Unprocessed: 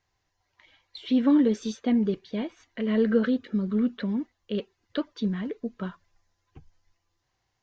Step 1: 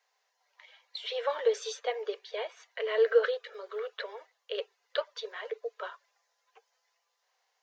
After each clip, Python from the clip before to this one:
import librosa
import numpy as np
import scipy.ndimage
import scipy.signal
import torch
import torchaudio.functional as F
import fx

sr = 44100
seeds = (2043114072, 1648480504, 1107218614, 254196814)

y = scipy.signal.sosfilt(scipy.signal.butter(16, 430.0, 'highpass', fs=sr, output='sos'), x)
y = y * 10.0 ** (2.5 / 20.0)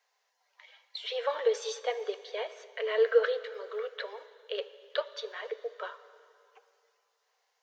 y = fx.rev_plate(x, sr, seeds[0], rt60_s=2.6, hf_ratio=0.95, predelay_ms=0, drr_db=13.5)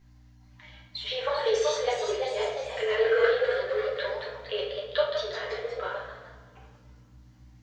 y = fx.add_hum(x, sr, base_hz=60, snr_db=27)
y = fx.echo_pitch(y, sr, ms=447, semitones=1, count=3, db_per_echo=-6.0)
y = fx.room_shoebox(y, sr, seeds[1], volume_m3=89.0, walls='mixed', distance_m=1.2)